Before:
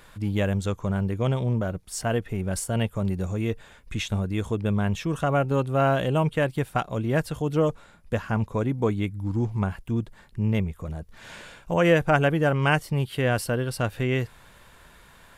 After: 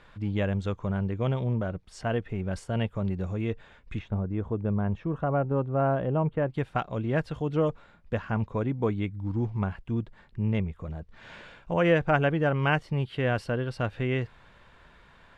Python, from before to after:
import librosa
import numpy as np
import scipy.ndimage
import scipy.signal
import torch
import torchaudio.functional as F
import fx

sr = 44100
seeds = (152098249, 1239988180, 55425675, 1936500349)

y = fx.lowpass(x, sr, hz=fx.steps((0.0, 3600.0), (3.99, 1200.0), (6.54, 3600.0)), slope=12)
y = y * 10.0 ** (-3.0 / 20.0)